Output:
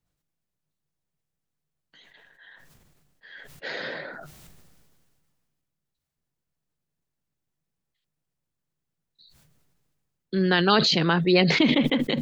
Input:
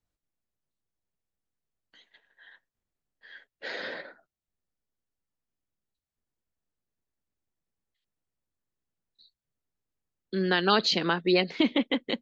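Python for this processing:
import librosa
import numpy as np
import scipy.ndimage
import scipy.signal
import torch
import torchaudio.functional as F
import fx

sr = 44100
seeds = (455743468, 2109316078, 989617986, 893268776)

y = fx.peak_eq(x, sr, hz=150.0, db=12.0, octaves=0.38)
y = fx.sustainer(y, sr, db_per_s=27.0)
y = F.gain(torch.from_numpy(y), 2.5).numpy()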